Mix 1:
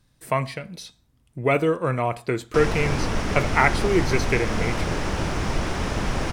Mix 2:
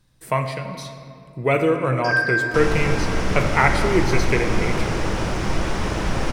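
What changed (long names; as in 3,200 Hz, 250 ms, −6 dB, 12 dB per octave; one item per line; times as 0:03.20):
first sound: unmuted
reverb: on, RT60 2.6 s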